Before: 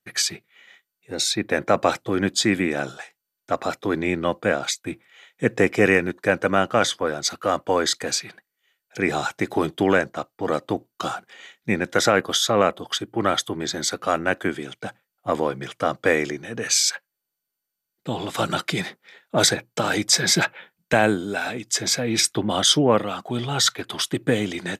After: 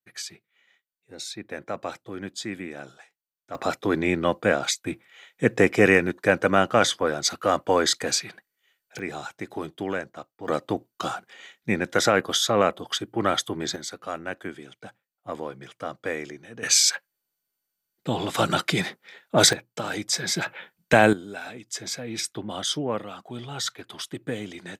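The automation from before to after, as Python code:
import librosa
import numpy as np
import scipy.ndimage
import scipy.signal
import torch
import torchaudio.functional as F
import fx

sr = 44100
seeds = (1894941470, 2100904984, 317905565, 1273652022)

y = fx.gain(x, sr, db=fx.steps((0.0, -13.0), (3.55, 0.0), (8.99, -10.5), (10.48, -2.0), (13.76, -10.5), (16.63, 1.0), (19.53, -7.5), (20.46, 1.5), (21.13, -10.0)))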